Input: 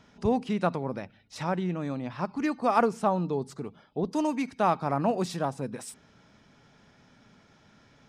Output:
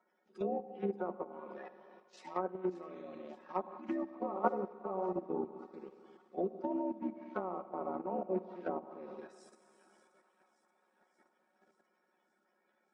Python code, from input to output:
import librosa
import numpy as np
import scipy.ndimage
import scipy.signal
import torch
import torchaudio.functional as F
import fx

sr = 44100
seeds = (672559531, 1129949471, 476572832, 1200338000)

y = fx.spec_quant(x, sr, step_db=30)
y = scipy.signal.sosfilt(scipy.signal.butter(4, 250.0, 'highpass', fs=sr, output='sos'), y)
y = fx.high_shelf(y, sr, hz=4100.0, db=-10.0)
y = fx.rev_schroeder(y, sr, rt60_s=1.3, comb_ms=29, drr_db=6.0)
y = fx.dynamic_eq(y, sr, hz=2300.0, q=1.8, threshold_db=-50.0, ratio=4.0, max_db=8)
y = fx.level_steps(y, sr, step_db=10)
y = fx.env_lowpass_down(y, sr, base_hz=670.0, full_db=-29.0)
y = fx.echo_wet_highpass(y, sr, ms=362, feedback_pct=69, hz=1500.0, wet_db=-15.5)
y = fx.stretch_grains(y, sr, factor=1.6, grain_ms=29.0)
y = fx.upward_expand(y, sr, threshold_db=-43.0, expansion=1.5)
y = y * 10.0 ** (1.5 / 20.0)